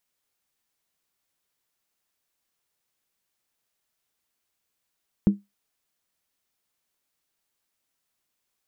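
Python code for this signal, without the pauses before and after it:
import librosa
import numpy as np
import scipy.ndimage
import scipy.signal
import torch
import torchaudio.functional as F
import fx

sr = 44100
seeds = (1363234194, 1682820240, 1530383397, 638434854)

y = fx.strike_skin(sr, length_s=0.63, level_db=-10, hz=201.0, decay_s=0.19, tilt_db=11.5, modes=5)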